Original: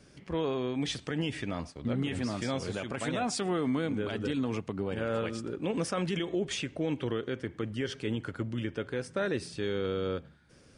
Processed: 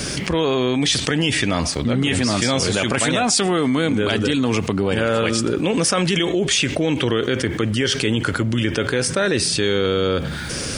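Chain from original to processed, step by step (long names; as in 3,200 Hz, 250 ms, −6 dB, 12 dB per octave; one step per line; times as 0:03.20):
high-shelf EQ 2,500 Hz +10 dB
envelope flattener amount 70%
level +8 dB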